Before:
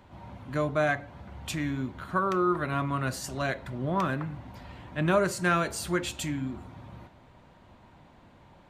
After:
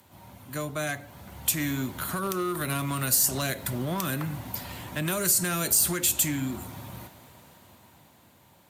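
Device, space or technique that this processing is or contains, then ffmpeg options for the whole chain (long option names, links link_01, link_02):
FM broadcast chain: -filter_complex "[0:a]highpass=frequency=72:width=0.5412,highpass=frequency=72:width=1.3066,dynaudnorm=framelen=290:gausssize=11:maxgain=11.5dB,acrossover=split=420|1100|2200|7800[link_01][link_02][link_03][link_04][link_05];[link_01]acompressor=threshold=-23dB:ratio=4[link_06];[link_02]acompressor=threshold=-33dB:ratio=4[link_07];[link_03]acompressor=threshold=-34dB:ratio=4[link_08];[link_04]acompressor=threshold=-34dB:ratio=4[link_09];[link_05]acompressor=threshold=-41dB:ratio=4[link_10];[link_06][link_07][link_08][link_09][link_10]amix=inputs=5:normalize=0,aemphasis=mode=production:type=50fm,alimiter=limit=-16.5dB:level=0:latency=1:release=110,asoftclip=type=hard:threshold=-19.5dB,lowpass=frequency=15000:width=0.5412,lowpass=frequency=15000:width=1.3066,aemphasis=mode=production:type=50fm,volume=-3.5dB"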